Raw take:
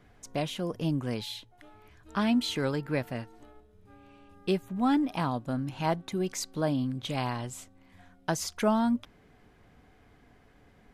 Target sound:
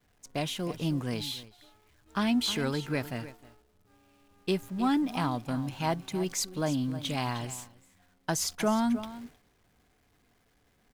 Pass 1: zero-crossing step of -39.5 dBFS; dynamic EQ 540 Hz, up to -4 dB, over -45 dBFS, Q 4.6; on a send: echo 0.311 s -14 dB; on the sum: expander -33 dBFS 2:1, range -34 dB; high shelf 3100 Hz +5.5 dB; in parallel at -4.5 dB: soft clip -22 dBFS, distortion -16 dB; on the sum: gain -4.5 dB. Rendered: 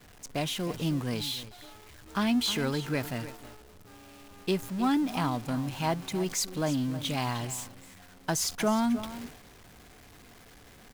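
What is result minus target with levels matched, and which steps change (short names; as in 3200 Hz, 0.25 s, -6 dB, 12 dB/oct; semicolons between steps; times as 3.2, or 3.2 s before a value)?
zero-crossing step: distortion +10 dB
change: zero-crossing step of -50 dBFS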